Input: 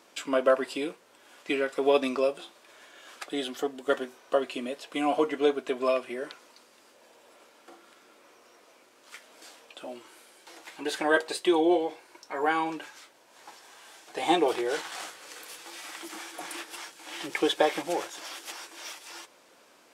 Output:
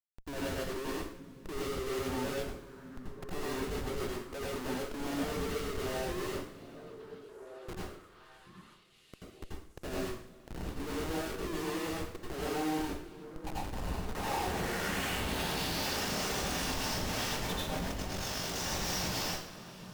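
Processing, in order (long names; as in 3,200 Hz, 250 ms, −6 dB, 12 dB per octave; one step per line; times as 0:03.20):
downward compressor 2 to 1, threshold −44 dBFS, peak gain reduction 14.5 dB
band-pass filter sweep 380 Hz → 5,700 Hz, 0:12.76–0:15.93
comparator with hysteresis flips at −52.5 dBFS
0:17.84–0:18.56: ring modulation 24 Hz
pitch vibrato 0.93 Hz 66 cents
echo through a band-pass that steps 782 ms, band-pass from 180 Hz, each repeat 1.4 octaves, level −7.5 dB
convolution reverb, pre-delay 81 ms, DRR −5 dB
level +7 dB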